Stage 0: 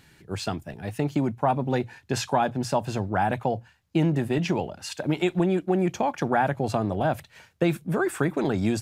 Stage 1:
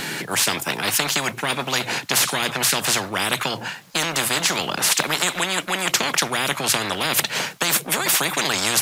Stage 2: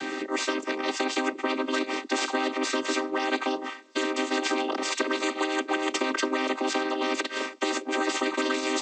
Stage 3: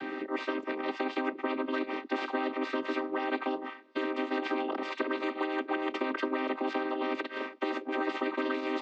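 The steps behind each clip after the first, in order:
steep high-pass 150 Hz 36 dB/octave; spectrum-flattening compressor 10:1; trim +8.5 dB
vocoder on a held chord minor triad, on C4; trim -4 dB
distance through air 370 m; trim -3 dB

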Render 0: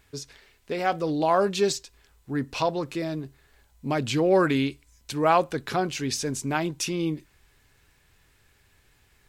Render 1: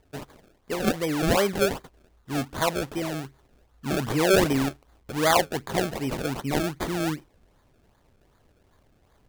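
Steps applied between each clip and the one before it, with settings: decimation with a swept rate 31×, swing 100% 2.6 Hz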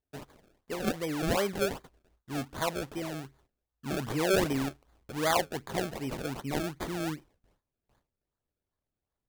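gate with hold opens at -50 dBFS; trim -6.5 dB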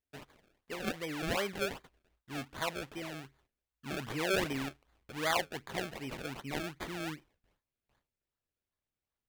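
peaking EQ 2.4 kHz +7.5 dB 1.8 oct; trim -7 dB

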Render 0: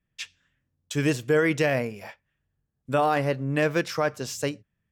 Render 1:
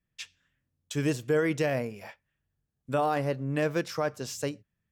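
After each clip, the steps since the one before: dynamic bell 2.2 kHz, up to -4 dB, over -37 dBFS, Q 0.8; trim -3.5 dB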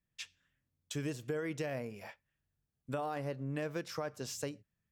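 compression 4:1, threshold -31 dBFS, peak gain reduction 8.5 dB; trim -4 dB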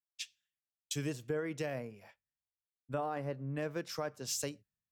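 three bands expanded up and down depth 100%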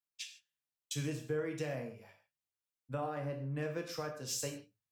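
gated-style reverb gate 180 ms falling, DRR 2.5 dB; trim -3 dB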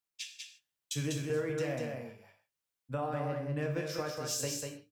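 delay 195 ms -4 dB; trim +2.5 dB

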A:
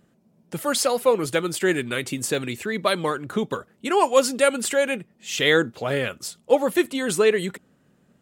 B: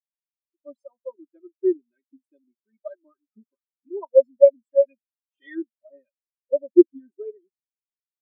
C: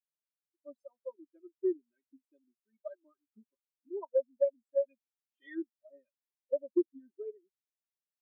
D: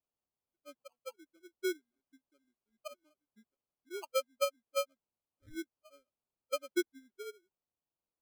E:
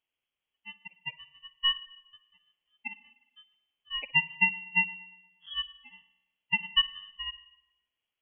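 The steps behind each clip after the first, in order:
comb 3.2 ms, depth 94%; spectral contrast expander 4:1
compression 4:1, threshold -19 dBFS, peak gain reduction 11.5 dB; trim -7 dB
sample-and-hold 24×; trim -4 dB
spring tank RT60 1 s, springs 50/59 ms, chirp 45 ms, DRR 15.5 dB; frequency inversion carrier 3.3 kHz; trim +7.5 dB

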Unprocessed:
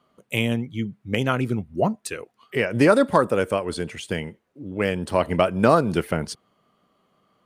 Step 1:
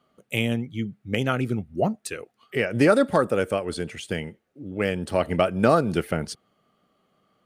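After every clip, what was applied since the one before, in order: band-stop 1 kHz, Q 6.3; trim -1.5 dB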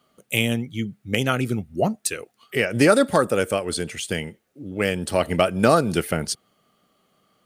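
treble shelf 3.9 kHz +11 dB; trim +1.5 dB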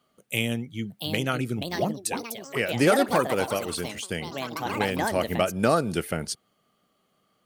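ever faster or slower copies 766 ms, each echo +5 st, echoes 3, each echo -6 dB; trim -5 dB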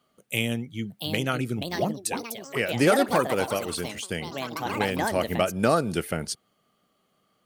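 no audible change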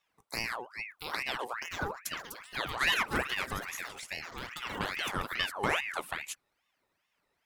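ring modulator with a swept carrier 1.5 kHz, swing 60%, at 2.4 Hz; trim -6 dB

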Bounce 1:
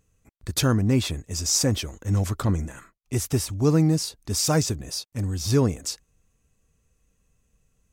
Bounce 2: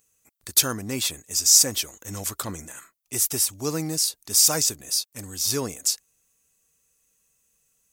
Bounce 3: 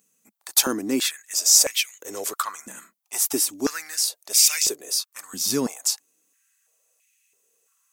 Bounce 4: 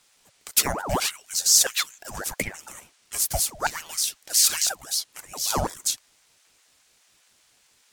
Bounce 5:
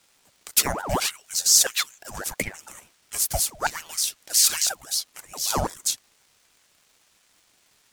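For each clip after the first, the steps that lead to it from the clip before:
RIAA curve recording; trim -2.5 dB
step-sequenced high-pass 3 Hz 210–2300 Hz
band noise 930–9100 Hz -61 dBFS; ring modulator with a swept carrier 760 Hz, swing 60%, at 4.9 Hz; trim +1 dB
in parallel at -7 dB: crossover distortion -37.5 dBFS; on the sum: crackle 500 per s -48 dBFS; trim -2.5 dB

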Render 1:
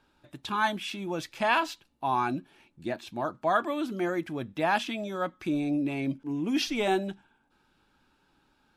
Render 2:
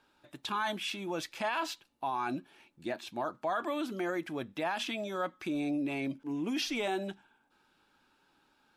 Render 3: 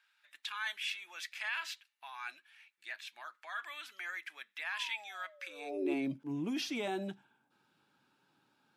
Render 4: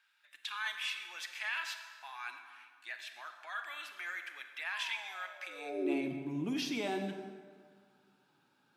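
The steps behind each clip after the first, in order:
peak limiter -23.5 dBFS, peak gain reduction 11 dB; bass shelf 180 Hz -12 dB
painted sound fall, 4.72–5.94 s, 340–1100 Hz -36 dBFS; high-pass sweep 1.9 kHz -> 130 Hz, 5.42–6.16 s; trim -4.5 dB
reverberation RT60 1.9 s, pre-delay 27 ms, DRR 6.5 dB

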